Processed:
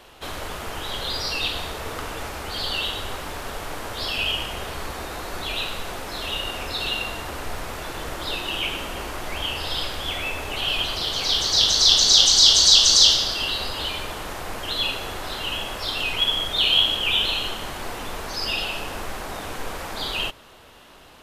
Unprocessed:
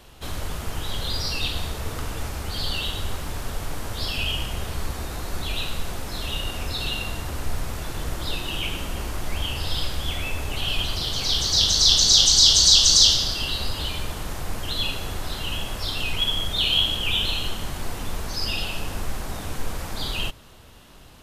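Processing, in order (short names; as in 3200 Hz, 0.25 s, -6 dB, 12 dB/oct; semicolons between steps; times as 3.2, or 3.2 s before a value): tone controls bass -12 dB, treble -6 dB; gain +4.5 dB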